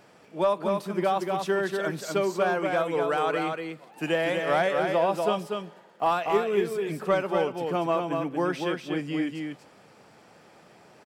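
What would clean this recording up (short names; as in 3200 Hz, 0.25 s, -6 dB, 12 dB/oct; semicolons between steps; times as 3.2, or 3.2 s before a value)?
de-click; inverse comb 0.24 s -4.5 dB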